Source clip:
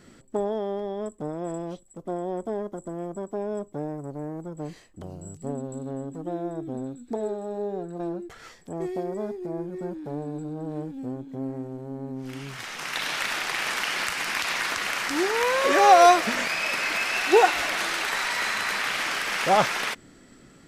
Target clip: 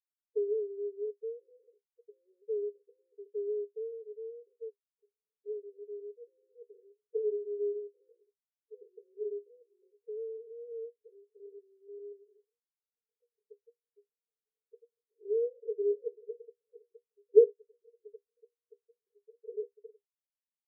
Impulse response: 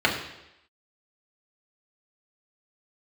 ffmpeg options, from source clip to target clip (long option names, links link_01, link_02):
-af "afftfilt=real='re*gte(hypot(re,im),0.0708)':imag='im*gte(hypot(re,im),0.0708)':win_size=1024:overlap=0.75,asuperpass=centerf=440:order=12:qfactor=6"